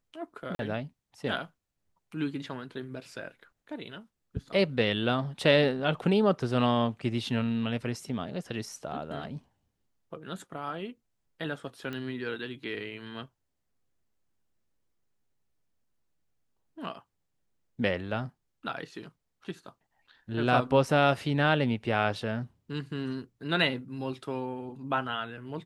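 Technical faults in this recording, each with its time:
0.55–0.59 gap 42 ms
11.93 pop -24 dBFS

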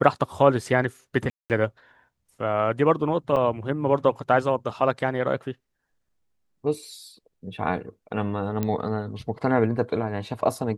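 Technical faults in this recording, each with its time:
1.3–1.5 gap 0.198 s
3.36 gap 4.6 ms
8.63 pop -13 dBFS

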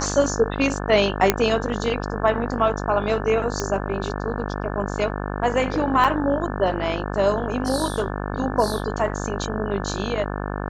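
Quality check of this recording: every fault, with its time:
buzz 50 Hz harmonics 35 -28 dBFS
1.3 pop 0 dBFS
3.6 pop -10 dBFS
6.04–6.05 gap 6.1 ms

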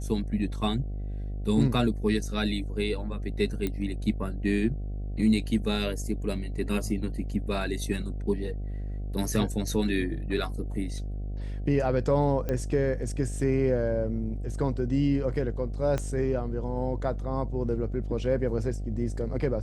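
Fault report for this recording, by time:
buzz 50 Hz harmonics 15 -33 dBFS
3.67 pop -17 dBFS
12.49 pop -17 dBFS
15.98 pop -17 dBFS

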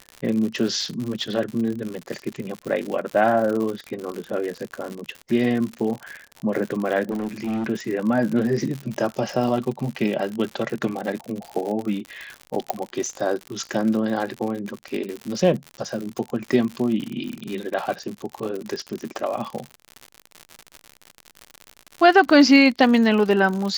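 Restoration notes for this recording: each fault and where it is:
crackle 99/s -27 dBFS
7.1–7.7 clipped -22.5 dBFS
12.7 pop -7 dBFS

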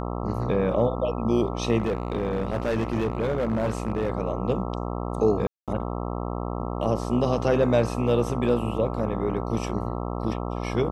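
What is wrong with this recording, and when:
buzz 60 Hz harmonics 22 -30 dBFS
1.78–4.1 clipped -20.5 dBFS
5.47–5.68 gap 0.207 s

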